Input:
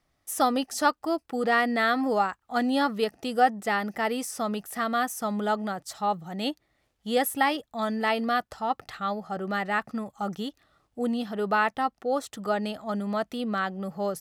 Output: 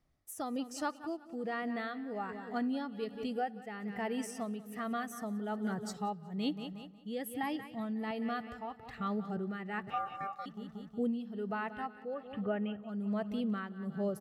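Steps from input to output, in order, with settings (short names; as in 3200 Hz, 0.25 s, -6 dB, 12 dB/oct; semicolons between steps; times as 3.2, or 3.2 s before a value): 12.14–12.83 elliptic low-pass 3100 Hz; feedback echo 0.182 s, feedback 58%, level -12 dB; spectral noise reduction 8 dB; tremolo 1.2 Hz, depth 77%; compressor 1.5:1, threshold -42 dBFS, peak gain reduction 9 dB; 7.43–8.11 bell 130 Hz +13.5 dB 1.3 oct; vocal rider within 4 dB 0.5 s; low shelf 410 Hz +9.5 dB; 9.9–10.46 ring modulator 980 Hz; on a send at -24 dB: reverb RT60 2.6 s, pre-delay 4 ms; on the sum: gain -4.5 dB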